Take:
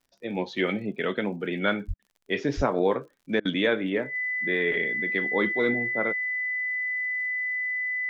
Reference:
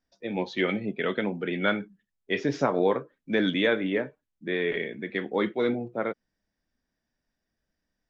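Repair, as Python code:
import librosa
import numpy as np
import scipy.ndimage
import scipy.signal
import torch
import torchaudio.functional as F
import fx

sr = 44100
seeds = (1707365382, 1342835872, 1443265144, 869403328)

y = fx.fix_declick_ar(x, sr, threshold=6.5)
y = fx.notch(y, sr, hz=2000.0, q=30.0)
y = fx.highpass(y, sr, hz=140.0, slope=24, at=(1.87, 1.99), fade=0.02)
y = fx.highpass(y, sr, hz=140.0, slope=24, at=(2.56, 2.68), fade=0.02)
y = fx.fix_interpolate(y, sr, at_s=(1.94, 3.4), length_ms=51.0)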